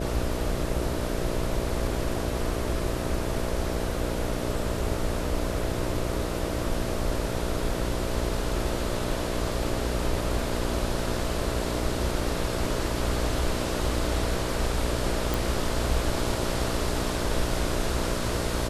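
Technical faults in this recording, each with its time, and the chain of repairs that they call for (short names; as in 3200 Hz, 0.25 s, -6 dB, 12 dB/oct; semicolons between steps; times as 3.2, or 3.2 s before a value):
buzz 60 Hz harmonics 11 -32 dBFS
15.34 pop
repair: de-click; de-hum 60 Hz, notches 11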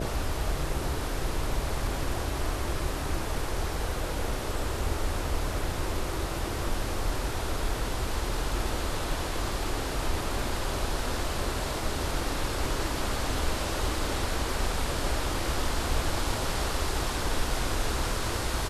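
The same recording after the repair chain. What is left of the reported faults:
none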